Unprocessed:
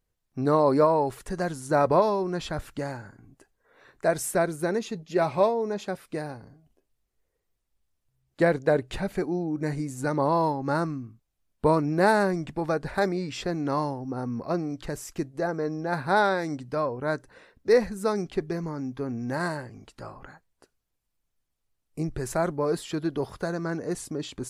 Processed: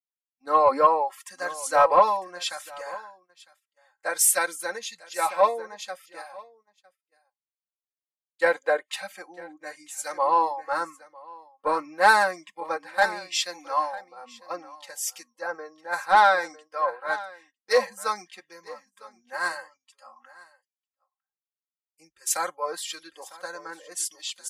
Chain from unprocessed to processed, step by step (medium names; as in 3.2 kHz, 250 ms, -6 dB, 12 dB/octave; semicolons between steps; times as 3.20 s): comb 3.8 ms, depth 90%; in parallel at -2.5 dB: compression 6:1, threshold -36 dBFS, peak gain reduction 22.5 dB; on the sum: high-pass 820 Hz 12 dB/octave; saturation -12.5 dBFS, distortion -23 dB; spectral noise reduction 22 dB; on a send: delay 954 ms -11.5 dB; on the sum: gate -49 dBFS, range -12 dB; three bands expanded up and down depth 100%